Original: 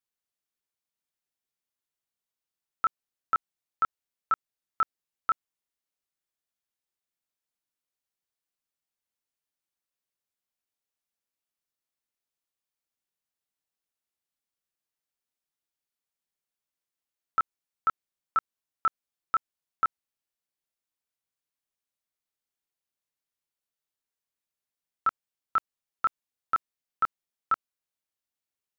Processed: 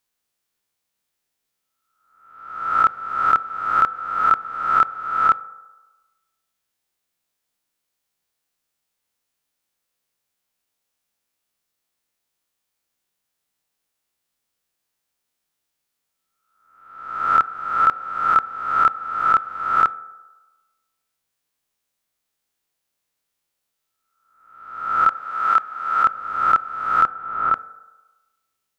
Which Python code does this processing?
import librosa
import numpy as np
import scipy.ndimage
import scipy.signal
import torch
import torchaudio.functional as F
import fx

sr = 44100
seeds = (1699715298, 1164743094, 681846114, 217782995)

y = fx.spec_swells(x, sr, rise_s=0.92)
y = fx.low_shelf(y, sr, hz=300.0, db=-10.0, at=(25.08, 26.06))
y = fx.lowpass(y, sr, hz=1300.0, slope=6, at=(27.04, 27.53), fade=0.02)
y = fx.rev_fdn(y, sr, rt60_s=1.2, lf_ratio=0.7, hf_ratio=0.35, size_ms=12.0, drr_db=15.5)
y = F.gain(torch.from_numpy(y), 9.0).numpy()